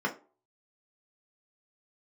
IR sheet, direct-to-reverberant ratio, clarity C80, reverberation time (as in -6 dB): -1.0 dB, 20.0 dB, 0.40 s